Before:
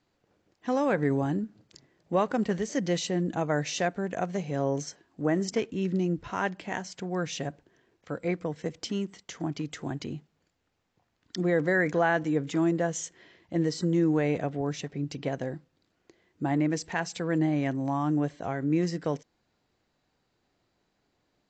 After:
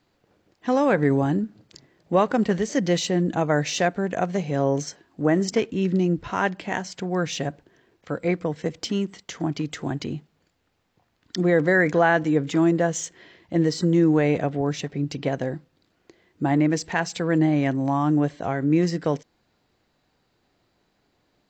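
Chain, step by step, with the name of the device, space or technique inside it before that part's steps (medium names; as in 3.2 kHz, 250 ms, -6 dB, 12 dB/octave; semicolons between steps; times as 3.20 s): exciter from parts (in parallel at -12 dB: high-pass 3.9 kHz 12 dB/octave + saturation -39.5 dBFS, distortion -8 dB + high-pass 4.9 kHz 24 dB/octave); on the sum: trim +6 dB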